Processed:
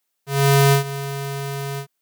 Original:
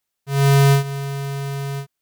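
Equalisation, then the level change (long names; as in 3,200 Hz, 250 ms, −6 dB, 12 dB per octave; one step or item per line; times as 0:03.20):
high-pass filter 170 Hz 12 dB per octave
high-shelf EQ 10,000 Hz +4 dB
+2.0 dB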